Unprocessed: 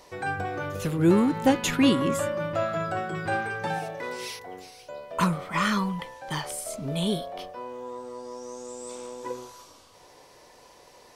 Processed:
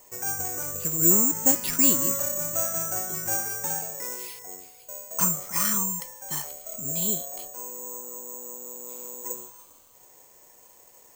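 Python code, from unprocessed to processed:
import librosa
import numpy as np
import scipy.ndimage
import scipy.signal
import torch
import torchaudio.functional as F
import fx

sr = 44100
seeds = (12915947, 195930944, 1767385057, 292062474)

y = (np.kron(scipy.signal.resample_poly(x, 1, 6), np.eye(6)[0]) * 6)[:len(x)]
y = F.gain(torch.from_numpy(y), -7.5).numpy()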